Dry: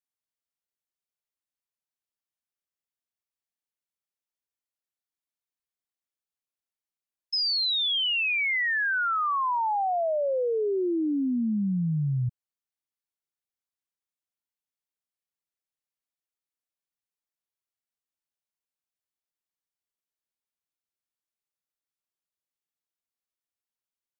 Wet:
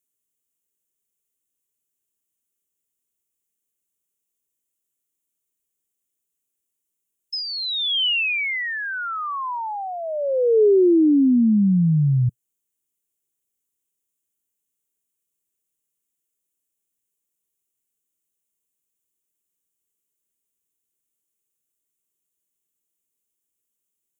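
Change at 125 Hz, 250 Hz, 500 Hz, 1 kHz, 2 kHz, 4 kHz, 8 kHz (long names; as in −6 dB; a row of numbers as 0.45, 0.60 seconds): +8.5 dB, +10.5 dB, +8.5 dB, −2.0 dB, +1.0 dB, +2.5 dB, can't be measured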